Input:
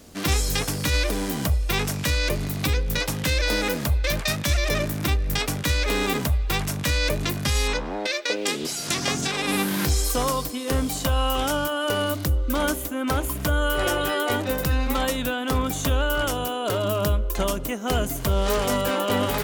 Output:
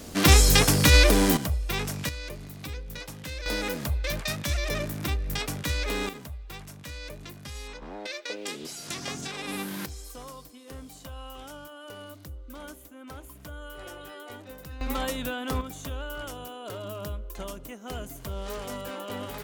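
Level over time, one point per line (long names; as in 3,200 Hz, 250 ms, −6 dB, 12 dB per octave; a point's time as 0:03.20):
+6 dB
from 0:01.37 −5.5 dB
from 0:02.09 −14 dB
from 0:03.46 −6 dB
from 0:06.09 −17 dB
from 0:07.82 −10 dB
from 0:09.86 −19 dB
from 0:14.81 −6 dB
from 0:15.61 −13 dB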